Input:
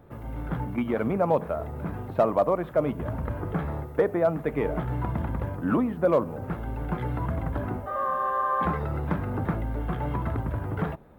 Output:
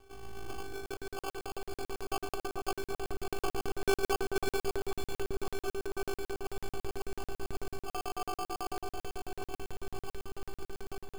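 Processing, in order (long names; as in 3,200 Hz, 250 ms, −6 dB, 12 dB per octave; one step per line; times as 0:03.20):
source passing by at 0:03.82, 11 m/s, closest 4.8 metres
dynamic equaliser 120 Hz, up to −6 dB, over −56 dBFS, Q 0.77
in parallel at −2 dB: compressor whose output falls as the input rises −47 dBFS, ratio −0.5
on the sum: asymmetric clip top −43.5 dBFS, bottom −24 dBFS
phases set to zero 393 Hz
decimation without filtering 23×
delay that swaps between a low-pass and a high-pass 263 ms, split 1,800 Hz, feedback 79%, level −5 dB
regular buffer underruns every 0.11 s, samples 2,048, zero, from 0:00.86
level +6 dB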